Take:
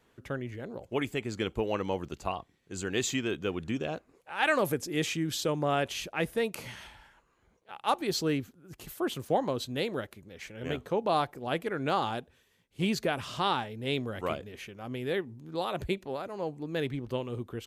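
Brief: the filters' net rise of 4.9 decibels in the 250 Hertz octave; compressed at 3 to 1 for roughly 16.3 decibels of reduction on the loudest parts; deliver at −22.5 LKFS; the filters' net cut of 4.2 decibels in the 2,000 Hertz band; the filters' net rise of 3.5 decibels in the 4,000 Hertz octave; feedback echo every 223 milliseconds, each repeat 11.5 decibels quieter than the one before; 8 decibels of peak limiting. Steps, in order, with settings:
parametric band 250 Hz +6.5 dB
parametric band 2,000 Hz −8 dB
parametric band 4,000 Hz +7 dB
downward compressor 3 to 1, threshold −45 dBFS
brickwall limiter −34.5 dBFS
repeating echo 223 ms, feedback 27%, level −11.5 dB
level +23 dB

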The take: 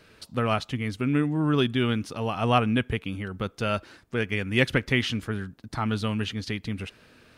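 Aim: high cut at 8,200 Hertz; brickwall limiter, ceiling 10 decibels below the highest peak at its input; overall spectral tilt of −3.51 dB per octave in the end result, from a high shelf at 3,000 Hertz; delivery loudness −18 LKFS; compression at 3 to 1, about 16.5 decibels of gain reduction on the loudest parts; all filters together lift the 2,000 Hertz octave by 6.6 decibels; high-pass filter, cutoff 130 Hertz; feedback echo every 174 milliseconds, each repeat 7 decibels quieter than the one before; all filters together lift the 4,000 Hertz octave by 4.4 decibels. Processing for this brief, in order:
high-pass filter 130 Hz
low-pass filter 8,200 Hz
parametric band 2,000 Hz +8 dB
high-shelf EQ 3,000 Hz −3.5 dB
parametric band 4,000 Hz +5 dB
downward compressor 3 to 1, threshold −37 dBFS
brickwall limiter −27 dBFS
repeating echo 174 ms, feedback 45%, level −7 dB
level +21 dB

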